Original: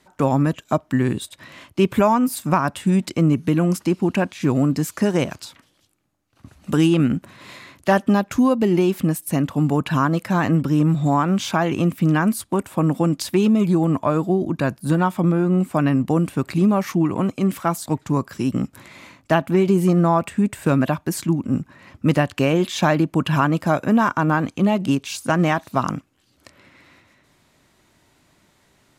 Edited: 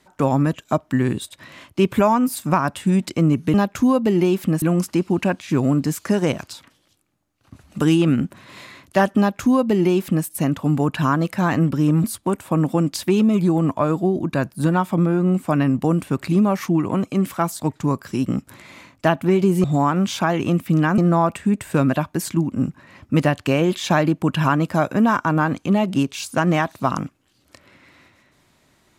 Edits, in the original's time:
8.1–9.18 copy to 3.54
10.96–12.3 move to 19.9

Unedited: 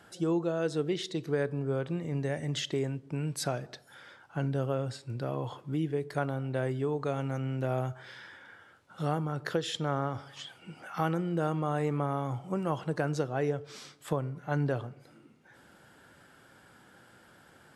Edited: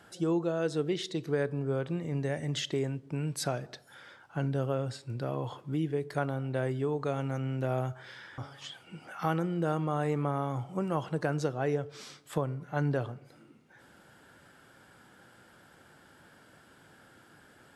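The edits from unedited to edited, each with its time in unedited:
8.38–10.13 cut

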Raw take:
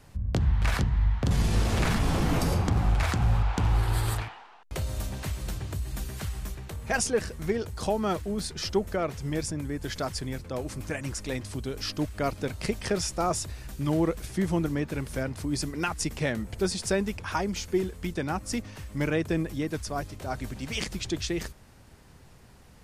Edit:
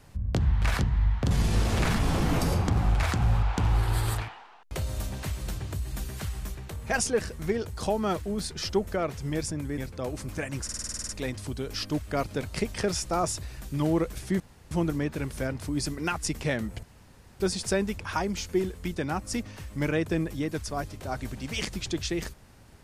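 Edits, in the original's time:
9.78–10.3 cut
11.16 stutter 0.05 s, 10 plays
14.47 insert room tone 0.31 s
16.59 insert room tone 0.57 s

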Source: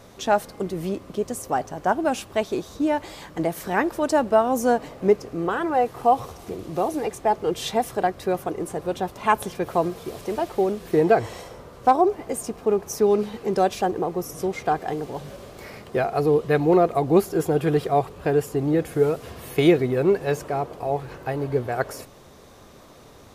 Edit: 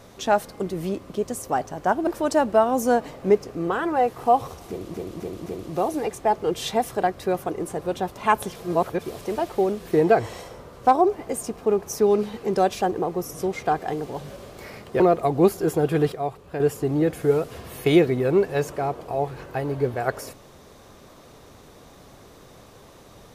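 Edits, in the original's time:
2.07–3.85 cut
6.46–6.72 loop, 4 plays
9.56–10.02 reverse
16–16.72 cut
17.84–18.32 gain -7 dB

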